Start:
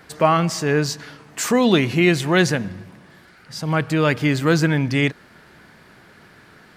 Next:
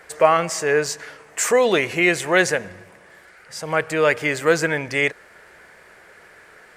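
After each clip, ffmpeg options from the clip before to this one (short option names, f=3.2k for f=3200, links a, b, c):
-af "equalizer=f=125:t=o:w=1:g=-9,equalizer=f=250:t=o:w=1:g=-10,equalizer=f=500:t=o:w=1:g=9,equalizer=f=2k:t=o:w=1:g=7,equalizer=f=4k:t=o:w=1:g=-5,equalizer=f=8k:t=o:w=1:g=8,volume=-2.5dB"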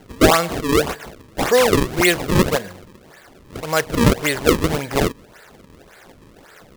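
-af "acrusher=samples=35:mix=1:aa=0.000001:lfo=1:lforange=56:lforate=1.8,volume=2dB"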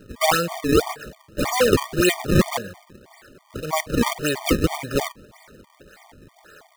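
-af "afftfilt=real='re*gt(sin(2*PI*3.1*pts/sr)*(1-2*mod(floor(b*sr/1024/610),2)),0)':imag='im*gt(sin(2*PI*3.1*pts/sr)*(1-2*mod(floor(b*sr/1024/610),2)),0)':win_size=1024:overlap=0.75"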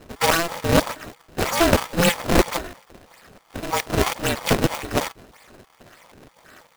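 -af "aeval=exprs='val(0)*sgn(sin(2*PI*170*n/s))':c=same"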